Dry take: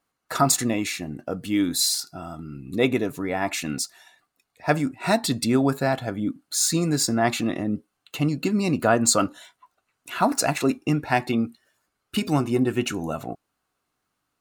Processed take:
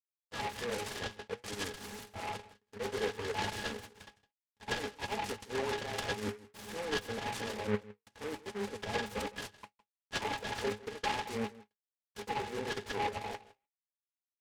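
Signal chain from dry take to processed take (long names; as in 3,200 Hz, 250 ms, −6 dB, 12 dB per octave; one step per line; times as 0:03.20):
high-pass filter 520 Hz 24 dB per octave
noise gate with hold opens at −48 dBFS
comb filter 5.9 ms, depth 40%
volume swells 168 ms
fuzz pedal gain 39 dB, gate −45 dBFS
reversed playback
downward compressor 5 to 1, threshold −25 dBFS, peak gain reduction 10 dB
reversed playback
flanger 0.42 Hz, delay 1.8 ms, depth 7.9 ms, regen +80%
resonances in every octave G#, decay 0.11 s
on a send: single-tap delay 160 ms −19 dB
on the sum: downsampling to 16,000 Hz
short delay modulated by noise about 1,400 Hz, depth 0.11 ms
level +9 dB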